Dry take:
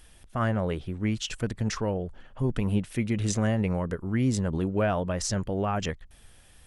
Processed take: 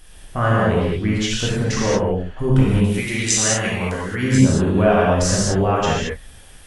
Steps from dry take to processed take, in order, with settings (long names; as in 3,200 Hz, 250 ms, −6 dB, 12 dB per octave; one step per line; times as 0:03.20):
0:02.96–0:04.23: tilt shelving filter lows −8 dB, about 1,200 Hz
reverb whose tail is shaped and stops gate 250 ms flat, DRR −6.5 dB
level +4 dB